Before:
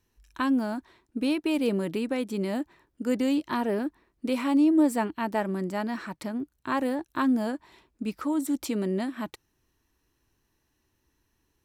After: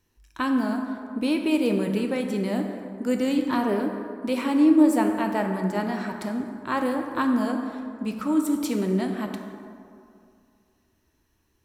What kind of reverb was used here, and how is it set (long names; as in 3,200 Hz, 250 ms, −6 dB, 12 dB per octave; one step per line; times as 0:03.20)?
dense smooth reverb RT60 2.4 s, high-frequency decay 0.45×, DRR 3.5 dB
level +1.5 dB